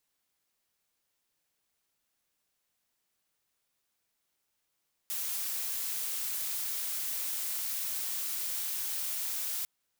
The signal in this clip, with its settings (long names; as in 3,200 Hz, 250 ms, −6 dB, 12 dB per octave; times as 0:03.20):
noise blue, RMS −34.5 dBFS 4.55 s